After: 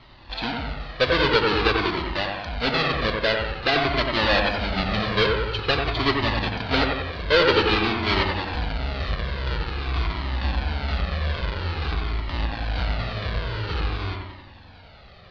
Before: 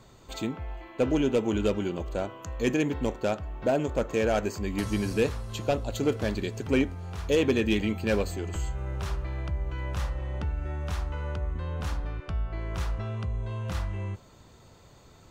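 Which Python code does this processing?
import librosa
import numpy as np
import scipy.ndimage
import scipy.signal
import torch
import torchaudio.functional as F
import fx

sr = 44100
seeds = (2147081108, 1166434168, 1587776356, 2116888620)

p1 = fx.halfwave_hold(x, sr)
p2 = fx.wow_flutter(p1, sr, seeds[0], rate_hz=2.1, depth_cents=120.0)
p3 = fx.curve_eq(p2, sr, hz=(220.0, 4500.0, 7700.0), db=(0, 13, -29))
p4 = p3 + fx.echo_wet_lowpass(p3, sr, ms=91, feedback_pct=57, hz=2700.0, wet_db=-3, dry=0)
y = fx.comb_cascade(p4, sr, direction='falling', hz=0.49)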